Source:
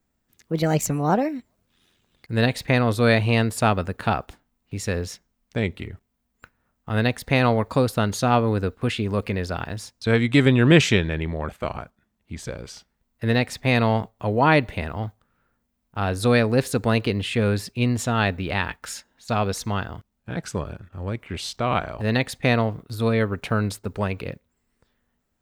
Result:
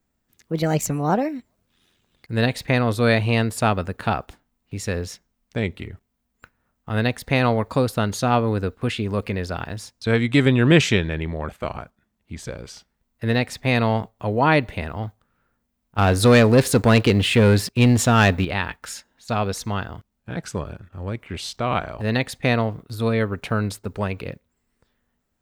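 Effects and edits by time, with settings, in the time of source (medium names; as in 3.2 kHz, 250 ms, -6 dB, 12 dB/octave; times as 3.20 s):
15.98–18.45 s: waveshaping leveller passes 2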